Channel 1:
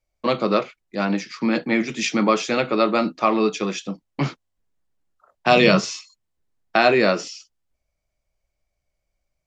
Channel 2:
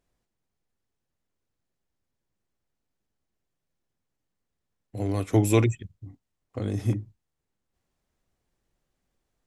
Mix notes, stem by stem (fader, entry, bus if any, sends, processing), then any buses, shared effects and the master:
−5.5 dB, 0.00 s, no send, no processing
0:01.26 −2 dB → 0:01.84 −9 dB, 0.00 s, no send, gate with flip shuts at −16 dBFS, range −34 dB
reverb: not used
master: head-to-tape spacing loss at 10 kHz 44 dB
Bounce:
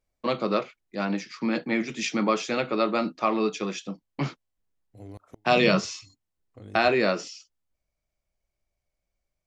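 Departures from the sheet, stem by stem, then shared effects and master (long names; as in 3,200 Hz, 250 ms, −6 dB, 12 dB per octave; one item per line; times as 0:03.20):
stem 2 −2.0 dB → −8.0 dB
master: missing head-to-tape spacing loss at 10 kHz 44 dB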